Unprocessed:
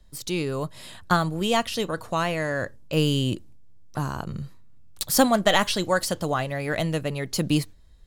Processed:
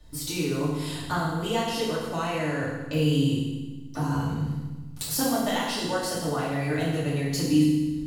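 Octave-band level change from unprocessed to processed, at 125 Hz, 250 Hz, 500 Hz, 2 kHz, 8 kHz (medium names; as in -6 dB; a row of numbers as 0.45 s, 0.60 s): +1.0 dB, +1.5 dB, -3.0 dB, -5.0 dB, -2.0 dB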